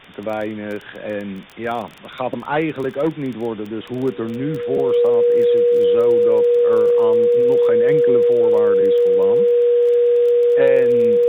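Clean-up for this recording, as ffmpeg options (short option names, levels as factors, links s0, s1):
-af "adeclick=t=4,bandreject=f=480:w=30,afwtdn=0.013"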